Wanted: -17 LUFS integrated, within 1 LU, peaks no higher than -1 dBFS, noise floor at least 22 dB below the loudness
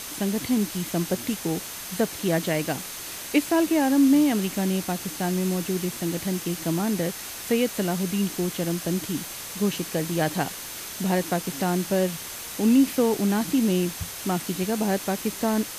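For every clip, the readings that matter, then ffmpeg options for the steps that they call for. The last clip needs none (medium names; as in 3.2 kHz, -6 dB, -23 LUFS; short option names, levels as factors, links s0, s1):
steady tone 6.3 kHz; tone level -47 dBFS; noise floor -37 dBFS; noise floor target -48 dBFS; loudness -25.5 LUFS; peak level -8.0 dBFS; loudness target -17.0 LUFS
-> -af "bandreject=f=6300:w=30"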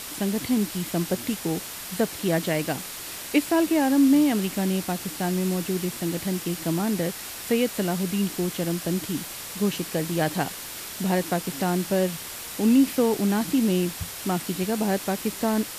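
steady tone not found; noise floor -37 dBFS; noise floor target -48 dBFS
-> -af "afftdn=nr=11:nf=-37"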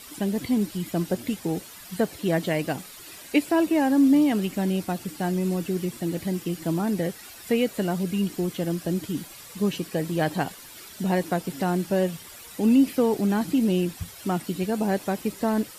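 noise floor -44 dBFS; noise floor target -48 dBFS
-> -af "afftdn=nr=6:nf=-44"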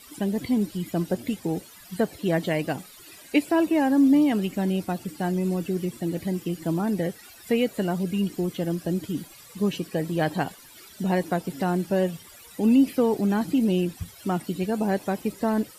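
noise floor -48 dBFS; loudness -25.5 LUFS; peak level -8.5 dBFS; loudness target -17.0 LUFS
-> -af "volume=2.66,alimiter=limit=0.891:level=0:latency=1"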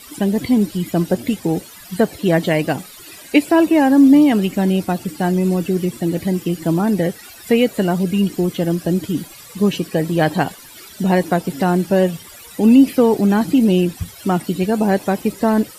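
loudness -17.0 LUFS; peak level -1.0 dBFS; noise floor -40 dBFS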